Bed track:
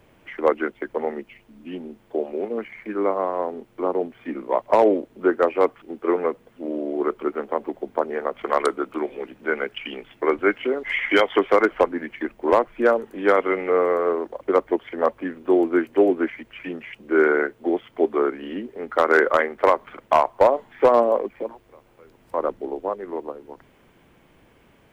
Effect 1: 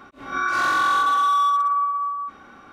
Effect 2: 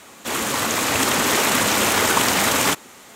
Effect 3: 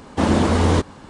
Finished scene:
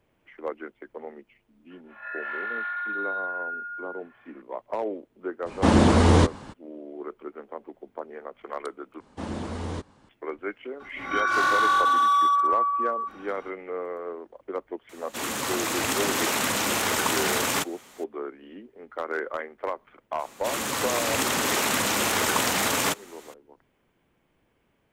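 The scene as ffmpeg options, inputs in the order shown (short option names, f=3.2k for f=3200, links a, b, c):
-filter_complex "[1:a]asplit=2[a][b];[3:a]asplit=2[c][d];[2:a]asplit=2[e][f];[0:a]volume=-13.5dB[g];[a]highpass=f=360:t=q:w=0.5412,highpass=f=360:t=q:w=1.307,lowpass=f=2.7k:t=q:w=0.5176,lowpass=f=2.7k:t=q:w=0.7071,lowpass=f=2.7k:t=q:w=1.932,afreqshift=280[h];[g]asplit=2[i][j];[i]atrim=end=9.004[k];[d]atrim=end=1.09,asetpts=PTS-STARTPTS,volume=-16dB[l];[j]atrim=start=10.086[m];[h]atrim=end=2.72,asetpts=PTS-STARTPTS,volume=-12dB,afade=t=in:d=0.004:c=hsin,afade=t=out:st=2.716:d=0.004:c=hsin,adelay=1700[n];[c]atrim=end=1.09,asetpts=PTS-STARTPTS,volume=-0.5dB,afade=t=in:d=0.02,afade=t=out:st=1.07:d=0.02,adelay=240345S[o];[b]atrim=end=2.72,asetpts=PTS-STARTPTS,volume=-1.5dB,afade=t=in:d=0.02,afade=t=out:st=2.7:d=0.02,adelay=10790[p];[e]atrim=end=3.15,asetpts=PTS-STARTPTS,volume=-7dB,afade=t=in:d=0.004:c=hsin,afade=t=out:st=3.146:d=0.004:c=hsin,adelay=14890[q];[f]atrim=end=3.15,asetpts=PTS-STARTPTS,volume=-6dB,afade=t=in:d=0.004:c=hsin,afade=t=out:st=3.146:d=0.004:c=hsin,adelay=20190[r];[k][l]acrossfade=d=0.004:c1=hsin:c2=hsin[s];[s][m]acrossfade=d=0.004:c1=hsin:c2=hsin[t];[t][n][o][p][q][r]amix=inputs=6:normalize=0"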